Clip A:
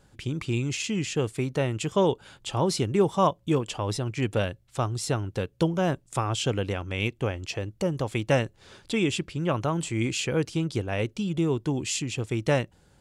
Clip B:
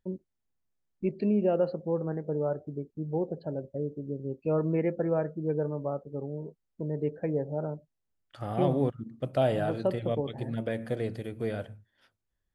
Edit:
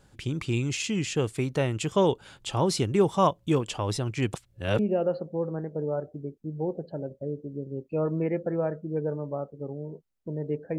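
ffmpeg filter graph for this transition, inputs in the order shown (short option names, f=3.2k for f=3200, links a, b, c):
-filter_complex "[0:a]apad=whole_dur=10.78,atrim=end=10.78,asplit=2[a][b];[a]atrim=end=4.342[c];[b]atrim=start=4.338:end=4.792,asetpts=PTS-STARTPTS,areverse[d];[1:a]atrim=start=1.318:end=7.31[e];[c][d]acrossfade=d=0.004:c1=hsin:c2=hsin[f];[f][e]acrossfade=d=0.004:c1=hsin:c2=hsin"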